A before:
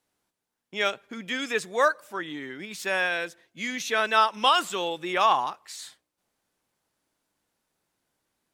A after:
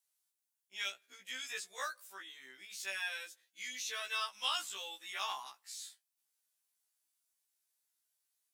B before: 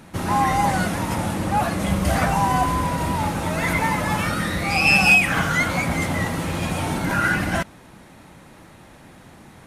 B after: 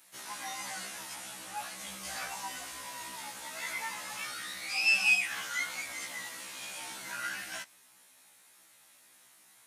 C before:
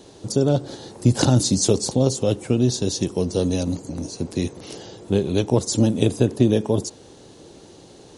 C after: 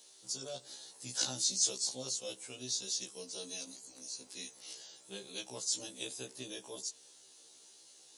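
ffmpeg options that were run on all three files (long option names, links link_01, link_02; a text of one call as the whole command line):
ffmpeg -i in.wav -filter_complex "[0:a]acrossover=split=7300[link_01][link_02];[link_02]acompressor=threshold=-50dB:ratio=4:attack=1:release=60[link_03];[link_01][link_03]amix=inputs=2:normalize=0,aderivative,afftfilt=real='re*1.73*eq(mod(b,3),0)':imag='im*1.73*eq(mod(b,3),0)':win_size=2048:overlap=0.75" out.wav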